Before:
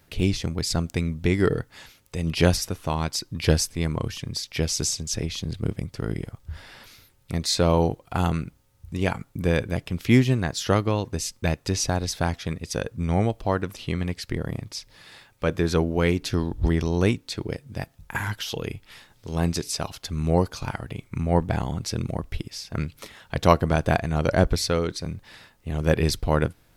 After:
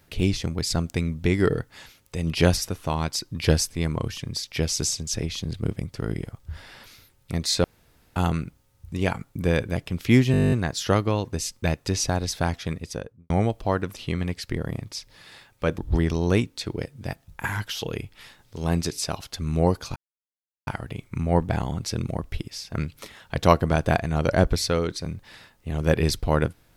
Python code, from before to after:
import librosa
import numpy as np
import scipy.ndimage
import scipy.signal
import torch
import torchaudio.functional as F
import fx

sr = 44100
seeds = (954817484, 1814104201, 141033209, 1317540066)

y = fx.studio_fade_out(x, sr, start_s=12.54, length_s=0.56)
y = fx.edit(y, sr, fx.room_tone_fill(start_s=7.64, length_s=0.52),
    fx.stutter(start_s=10.32, slice_s=0.02, count=11),
    fx.cut(start_s=15.58, length_s=0.91),
    fx.insert_silence(at_s=20.67, length_s=0.71), tone=tone)